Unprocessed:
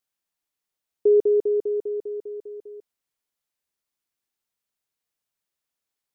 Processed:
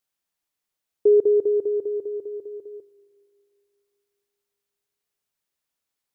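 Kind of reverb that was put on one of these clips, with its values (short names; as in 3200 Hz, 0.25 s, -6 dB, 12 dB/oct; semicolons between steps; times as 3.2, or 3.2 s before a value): spring tank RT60 2.9 s, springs 37/45 ms, chirp 55 ms, DRR 16 dB; gain +1.5 dB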